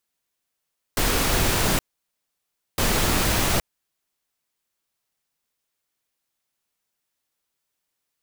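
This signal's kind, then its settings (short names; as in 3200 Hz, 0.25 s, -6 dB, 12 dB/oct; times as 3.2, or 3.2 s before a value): noise bursts pink, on 0.82 s, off 0.99 s, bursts 2, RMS -21 dBFS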